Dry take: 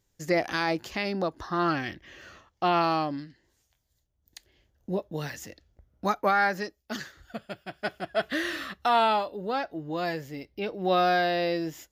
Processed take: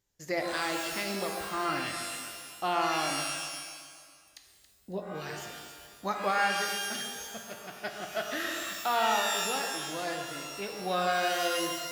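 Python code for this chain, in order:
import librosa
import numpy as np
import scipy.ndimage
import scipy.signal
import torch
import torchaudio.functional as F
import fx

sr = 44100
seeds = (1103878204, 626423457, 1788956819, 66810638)

p1 = fx.low_shelf(x, sr, hz=460.0, db=-5.5)
p2 = p1 + fx.echo_alternate(p1, sr, ms=138, hz=1100.0, feedback_pct=63, wet_db=-8.0, dry=0)
p3 = fx.rev_shimmer(p2, sr, seeds[0], rt60_s=1.2, semitones=12, shimmer_db=-2, drr_db=4.5)
y = p3 * 10.0 ** (-5.0 / 20.0)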